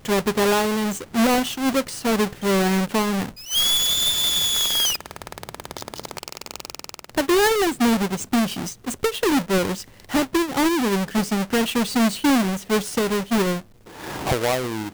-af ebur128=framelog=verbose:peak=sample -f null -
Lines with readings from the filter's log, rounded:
Integrated loudness:
  I:         -20.9 LUFS
  Threshold: -31.6 LUFS
Loudness range:
  LRA:         3.7 LU
  Threshold: -41.5 LUFS
  LRA low:   -23.2 LUFS
  LRA high:  -19.5 LUFS
Sample peak:
  Peak:      -13.3 dBFS